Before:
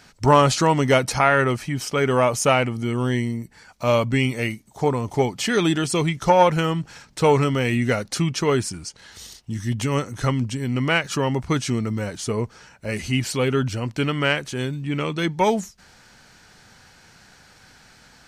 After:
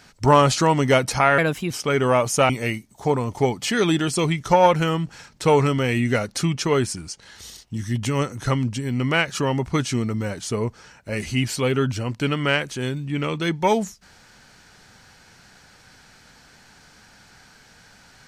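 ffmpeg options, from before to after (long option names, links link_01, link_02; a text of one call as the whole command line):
ffmpeg -i in.wav -filter_complex "[0:a]asplit=4[link_01][link_02][link_03][link_04];[link_01]atrim=end=1.384[link_05];[link_02]atrim=start=1.38:end=1.78,asetpts=PTS-STARTPTS,asetrate=54243,aresample=44100,atrim=end_sample=14341,asetpts=PTS-STARTPTS[link_06];[link_03]atrim=start=1.776:end=2.572[link_07];[link_04]atrim=start=4.258[link_08];[link_05][link_06]acrossfade=duration=0.004:curve1=hsin:curve2=hsin[link_09];[link_09][link_07]acrossfade=duration=0.004:curve1=hsin:curve2=hsin[link_10];[link_10][link_08]acrossfade=duration=0.004:curve1=hsin:curve2=hsin" out.wav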